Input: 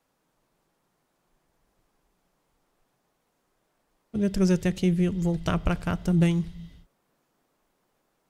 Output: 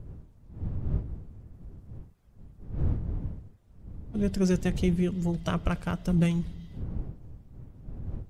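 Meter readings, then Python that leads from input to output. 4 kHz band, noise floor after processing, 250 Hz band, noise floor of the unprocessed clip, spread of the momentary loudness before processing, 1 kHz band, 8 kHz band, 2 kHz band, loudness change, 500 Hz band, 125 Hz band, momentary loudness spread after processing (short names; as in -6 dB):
-3.0 dB, -57 dBFS, -2.5 dB, -74 dBFS, 6 LU, -2.5 dB, -2.5 dB, -3.0 dB, -5.0 dB, -2.5 dB, -1.0 dB, 23 LU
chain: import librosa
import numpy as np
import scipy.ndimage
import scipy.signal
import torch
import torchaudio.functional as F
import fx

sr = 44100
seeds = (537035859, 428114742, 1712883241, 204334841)

y = fx.spec_quant(x, sr, step_db=15)
y = fx.dmg_wind(y, sr, seeds[0], corner_hz=100.0, level_db=-33.0)
y = y * librosa.db_to_amplitude(-2.5)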